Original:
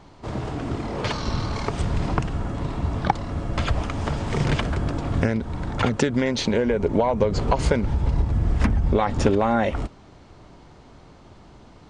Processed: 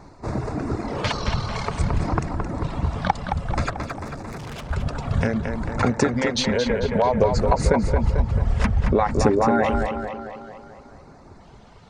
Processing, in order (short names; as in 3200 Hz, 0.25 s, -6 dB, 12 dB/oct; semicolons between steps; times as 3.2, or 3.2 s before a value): reverb removal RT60 1.5 s; in parallel at -3 dB: limiter -15.5 dBFS, peak gain reduction 11 dB; 3.7–4.7 on the sum: tube stage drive 32 dB, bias 0.6; LFO notch square 0.57 Hz 320–3100 Hz; on a send: tape echo 0.221 s, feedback 60%, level -4.5 dB, low-pass 4300 Hz; on the sum: gain -1 dB